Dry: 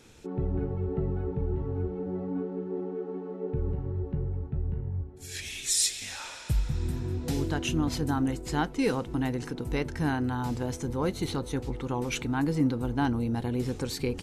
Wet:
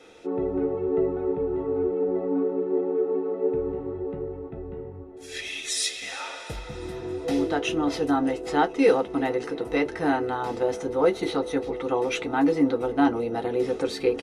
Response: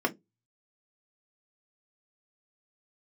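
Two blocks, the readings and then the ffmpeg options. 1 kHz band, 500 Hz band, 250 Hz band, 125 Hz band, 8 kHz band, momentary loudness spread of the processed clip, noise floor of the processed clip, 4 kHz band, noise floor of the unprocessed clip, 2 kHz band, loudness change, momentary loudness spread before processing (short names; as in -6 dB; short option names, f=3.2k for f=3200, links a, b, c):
+7.5 dB, +10.5 dB, +4.0 dB, -10.0 dB, -3.5 dB, 12 LU, -40 dBFS, +2.0 dB, -42 dBFS, +5.0 dB, +5.0 dB, 7 LU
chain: -filter_complex "[0:a]asplit=5[a][b][c][d][e];[b]adelay=346,afreqshift=-41,volume=-22.5dB[f];[c]adelay=692,afreqshift=-82,volume=-27.2dB[g];[d]adelay=1038,afreqshift=-123,volume=-32dB[h];[e]adelay=1384,afreqshift=-164,volume=-36.7dB[i];[a][f][g][h][i]amix=inputs=5:normalize=0[j];[1:a]atrim=start_sample=2205,asetrate=79380,aresample=44100[k];[j][k]afir=irnorm=-1:irlink=0"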